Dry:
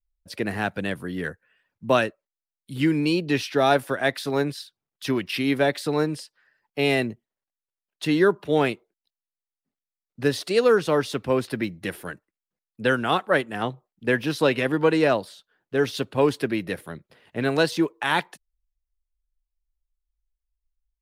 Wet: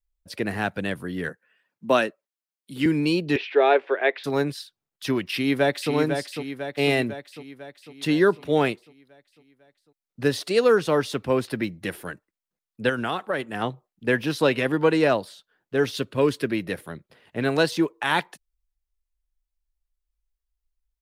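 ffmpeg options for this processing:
-filter_complex "[0:a]asettb=1/sr,asplit=3[a][b][c];[a]atrim=end=1.294[d];[b]atrim=start=1.29:end=2.86,asetpts=PTS-STARTPTS,afade=t=in:d=0.004:c=qsin,afade=t=out:st=1.566:d=0.004:c=qsin,highpass=f=160:w=0.5412,highpass=f=160:w=1.3066[e];[c]atrim=start=2.856[f];[d][e]acrossfade=d=0.004:c1=hsin:c2=qsin[g];[g][f]acrossfade=d=0.004:c1=qsin:c2=hsin,asettb=1/sr,asplit=3[h][i][j];[h]atrim=end=3.364[k];[i]atrim=start=3.36:end=4.24,asetpts=PTS-STARTPTS,afade=t=in:d=0.004:c=qsin,afade=t=out:st=0.876:d=0.004:c=qsin,highpass=f=370:w=0.5412,highpass=f=370:w=1.3066,equalizer=f=400:t=q:w=4:g=9,equalizer=f=1.3k:t=q:w=4:g=-3,equalizer=f=2.3k:t=q:w=4:g=5,lowpass=f=3.2k:w=0.5412,lowpass=f=3.2k:w=1.3066[l];[j]atrim=start=4.236[m];[k][l]acrossfade=d=0.004:c1=hsin:c2=qsin[n];[n][m]acrossfade=d=0.004:c1=qsin:c2=hsin,asplit=2[o][p];[p]afade=t=in:st=5.32:d=0.01,afade=t=out:st=5.92:d=0.01,aecho=0:1:500|1000|1500|2000|2500|3000|3500|4000:0.473151|0.283891|0.170334|0.102201|0.0613204|0.0367922|0.0220753|0.0132452[q];[o][q]amix=inputs=2:normalize=0,asettb=1/sr,asplit=3[r][s][t];[r]atrim=end=12.894[u];[s]atrim=start=12.89:end=13.56,asetpts=PTS-STARTPTS,afade=t=in:d=0.004:c=qsin,afade=t=out:st=0.666:d=0.004:c=qsin,acompressor=threshold=-21dB:ratio=6:attack=3.2:release=140:knee=1:detection=peak[v];[t]atrim=start=13.556[w];[u][v]acrossfade=d=0.004:c1=hsin:c2=qsin[x];[x][w]acrossfade=d=0.004:c1=qsin:c2=hsin,asettb=1/sr,asplit=3[y][z][aa];[y]atrim=end=15.984[ab];[z]atrim=start=15.98:end=16.49,asetpts=PTS-STARTPTS,afade=t=in:d=0.004:c=qsin,afade=t=out:st=0.506:d=0.004:c=qsin,equalizer=f=790:w=5:g=-14[ac];[aa]atrim=start=16.486[ad];[ab][ac]acrossfade=d=0.004:c1=hsin:c2=qsin[ae];[ae][ad]acrossfade=d=0.004:c1=qsin:c2=hsin"

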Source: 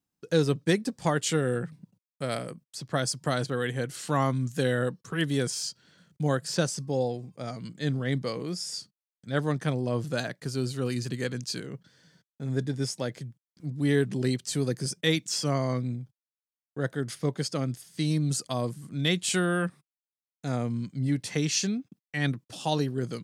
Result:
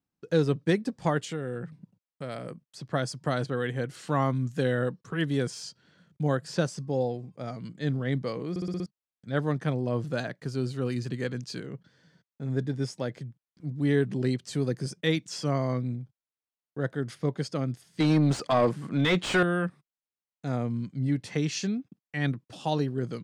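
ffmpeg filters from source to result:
-filter_complex "[0:a]asettb=1/sr,asplit=3[a][b][c];[a]atrim=end=1.254[d];[b]atrim=start=1.25:end=2.45,asetpts=PTS-STARTPTS,afade=t=in:d=0.004:c=qsin,afade=t=out:st=1.196:d=0.004:c=qsin,acompressor=threshold=-34dB:ratio=2:attack=3.2:release=140:knee=1:detection=peak[e];[c]atrim=start=2.446[f];[d][e]acrossfade=d=0.004:c1=hsin:c2=qsin[g];[g][f]acrossfade=d=0.004:c1=qsin:c2=hsin,asettb=1/sr,asplit=3[h][i][j];[h]atrim=end=18.004[k];[i]atrim=start=18:end=19.43,asetpts=PTS-STARTPTS,afade=t=in:d=0.004:c=qsin,afade=t=out:st=1.426:d=0.004:c=qsin,asplit=2[l][m];[m]highpass=f=720:p=1,volume=24dB,asoftclip=type=tanh:threshold=-11dB[n];[l][n]amix=inputs=2:normalize=0,lowpass=f=1.8k:p=1,volume=-6dB[o];[j]atrim=start=19.426[p];[k][o]acrossfade=d=0.004:c1=hsin:c2=qsin[q];[q][p]acrossfade=d=0.004:c1=qsin:c2=hsin,asplit=7[r][s][t][u][v][w][x];[r]atrim=end=8.562[y];[s]atrim=start=8.498:end=8.562[z];[t]atrim=start=8.498:end=8.562[aa];[u]atrim=start=8.498:end=8.562[ab];[v]atrim=start=8.498:end=8.562[ac];[w]atrim=start=8.498:end=8.562[ad];[x]atrim=start=8.858[ae];[y][z]acrossfade=d=0.004:c1=hsin:c2=hsin[af];[af][aa]acrossfade=d=0.004:c1=hsin:c2=hsin[ag];[ag][ab]acrossfade=d=0.004:c1=hsin:c2=hsin[ah];[ah][ac]acrossfade=d=0.004:c1=hsin:c2=hsin[ai];[ai][ad]acrossfade=d=0.004:c1=hsin:c2=hsin[aj];[aj][ae]acrossfade=d=0.004:c1=hsin:c2=hsin,lowpass=f=2.5k:p=1"

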